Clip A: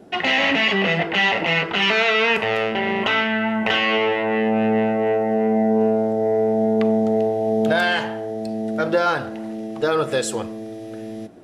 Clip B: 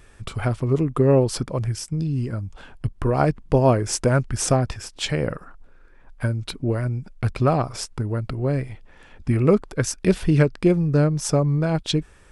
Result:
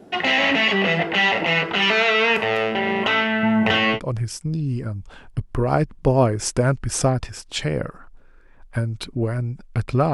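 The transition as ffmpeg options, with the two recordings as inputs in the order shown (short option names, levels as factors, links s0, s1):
-filter_complex "[0:a]asettb=1/sr,asplit=3[s0][s1][s2];[s0]atrim=end=3.434[s3];[s1]atrim=start=3.43:end=4,asetpts=PTS-STARTPTS,afade=t=in:d=0.004:c=qsin,afade=t=out:st=0.566:d=0.004:c=qsin,equalizer=f=110:t=o:w=1.8:g=11.5[s4];[s2]atrim=start=3.996[s5];[s3][s4]acrossfade=d=0.004:c1=hsin:c2=qsin[s6];[s6][s5]acrossfade=d=0.004:c1=qsin:c2=hsin,apad=whole_dur=10.13,atrim=end=10.13,atrim=end=4,asetpts=PTS-STARTPTS[s7];[1:a]atrim=start=1.37:end=7.6,asetpts=PTS-STARTPTS[s8];[s7][s8]acrossfade=d=0.1:c1=tri:c2=tri"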